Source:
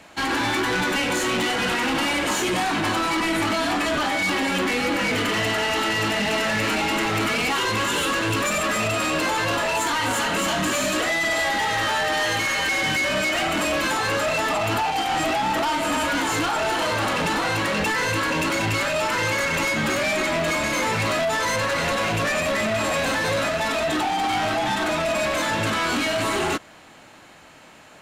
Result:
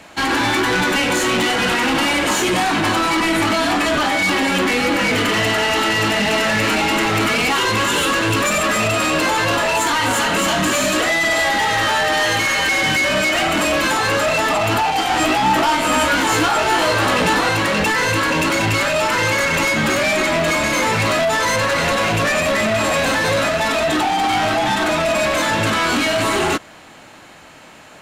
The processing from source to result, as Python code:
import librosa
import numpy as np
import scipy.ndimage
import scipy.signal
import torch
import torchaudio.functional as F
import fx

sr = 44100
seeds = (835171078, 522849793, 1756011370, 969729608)

y = fx.doubler(x, sr, ms=16.0, db=-5, at=(14.97, 17.49))
y = y * 10.0 ** (5.5 / 20.0)